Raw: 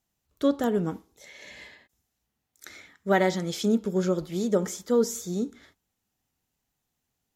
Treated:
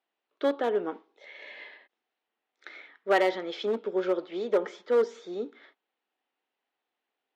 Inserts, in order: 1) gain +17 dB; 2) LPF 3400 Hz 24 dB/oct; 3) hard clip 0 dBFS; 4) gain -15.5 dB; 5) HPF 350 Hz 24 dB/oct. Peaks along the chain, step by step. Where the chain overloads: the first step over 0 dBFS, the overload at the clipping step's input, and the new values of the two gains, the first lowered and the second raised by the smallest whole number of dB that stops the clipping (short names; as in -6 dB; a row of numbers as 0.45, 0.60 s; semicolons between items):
+6.5, +6.0, 0.0, -15.5, -11.5 dBFS; step 1, 6.0 dB; step 1 +11 dB, step 4 -9.5 dB